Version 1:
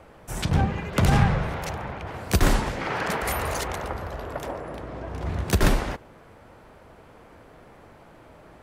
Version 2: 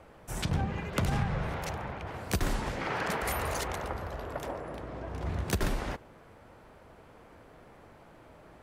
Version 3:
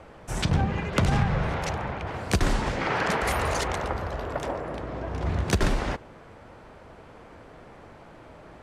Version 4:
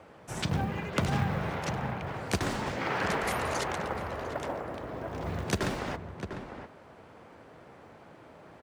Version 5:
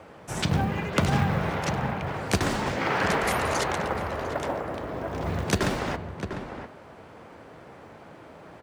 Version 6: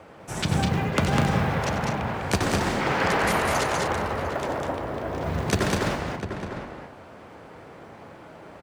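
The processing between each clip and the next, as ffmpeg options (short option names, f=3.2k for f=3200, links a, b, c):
-af "acompressor=threshold=-21dB:ratio=5,volume=-4.5dB"
-af "lowpass=8.2k,volume=6.5dB"
-filter_complex "[0:a]acrusher=bits=9:mode=log:mix=0:aa=0.000001,highpass=100,asplit=2[a][b];[b]adelay=699.7,volume=-8dB,highshelf=f=4k:g=-15.7[c];[a][c]amix=inputs=2:normalize=0,volume=-4.5dB"
-af "bandreject=f=122.5:t=h:w=4,bandreject=f=245:t=h:w=4,bandreject=f=367.5:t=h:w=4,bandreject=f=490:t=h:w=4,bandreject=f=612.5:t=h:w=4,bandreject=f=735:t=h:w=4,bandreject=f=857.5:t=h:w=4,bandreject=f=980:t=h:w=4,bandreject=f=1.1025k:t=h:w=4,bandreject=f=1.225k:t=h:w=4,bandreject=f=1.3475k:t=h:w=4,bandreject=f=1.47k:t=h:w=4,bandreject=f=1.5925k:t=h:w=4,bandreject=f=1.715k:t=h:w=4,bandreject=f=1.8375k:t=h:w=4,bandreject=f=1.96k:t=h:w=4,bandreject=f=2.0825k:t=h:w=4,bandreject=f=2.205k:t=h:w=4,bandreject=f=2.3275k:t=h:w=4,bandreject=f=2.45k:t=h:w=4,bandreject=f=2.5725k:t=h:w=4,bandreject=f=2.695k:t=h:w=4,bandreject=f=2.8175k:t=h:w=4,bandreject=f=2.94k:t=h:w=4,bandreject=f=3.0625k:t=h:w=4,bandreject=f=3.185k:t=h:w=4,bandreject=f=3.3075k:t=h:w=4,bandreject=f=3.43k:t=h:w=4,bandreject=f=3.5525k:t=h:w=4,bandreject=f=3.675k:t=h:w=4,bandreject=f=3.7975k:t=h:w=4,bandreject=f=3.92k:t=h:w=4,bandreject=f=4.0425k:t=h:w=4,bandreject=f=4.165k:t=h:w=4,bandreject=f=4.2875k:t=h:w=4,bandreject=f=4.41k:t=h:w=4,bandreject=f=4.5325k:t=h:w=4,bandreject=f=4.655k:t=h:w=4,volume=5.5dB"
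-af "aecho=1:1:90.38|201.2|236.2:0.282|0.708|0.282"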